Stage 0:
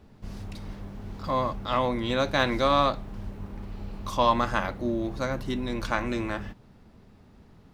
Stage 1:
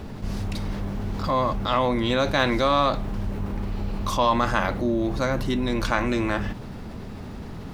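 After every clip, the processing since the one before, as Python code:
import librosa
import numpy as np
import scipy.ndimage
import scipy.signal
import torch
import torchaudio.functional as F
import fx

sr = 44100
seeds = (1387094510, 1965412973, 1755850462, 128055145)

y = fx.env_flatten(x, sr, amount_pct=50)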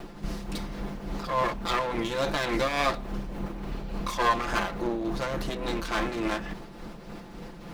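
y = fx.lower_of_two(x, sr, delay_ms=5.8)
y = fx.peak_eq(y, sr, hz=96.0, db=-11.5, octaves=0.97)
y = y * (1.0 - 0.46 / 2.0 + 0.46 / 2.0 * np.cos(2.0 * np.pi * 3.5 * (np.arange(len(y)) / sr)))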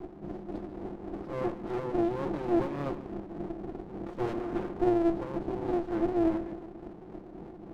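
y = fx.bandpass_q(x, sr, hz=350.0, q=4.1)
y = fx.echo_feedback(y, sr, ms=144, feedback_pct=49, wet_db=-15)
y = fx.running_max(y, sr, window=33)
y = y * librosa.db_to_amplitude(8.0)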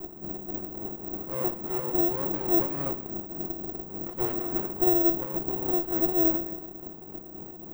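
y = (np.kron(x[::2], np.eye(2)[0]) * 2)[:len(x)]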